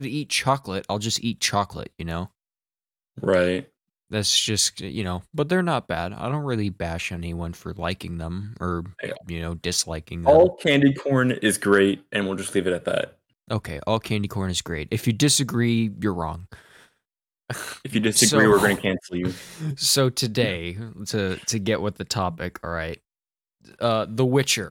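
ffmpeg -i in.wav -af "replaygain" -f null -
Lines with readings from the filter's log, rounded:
track_gain = +1.9 dB
track_peak = 0.494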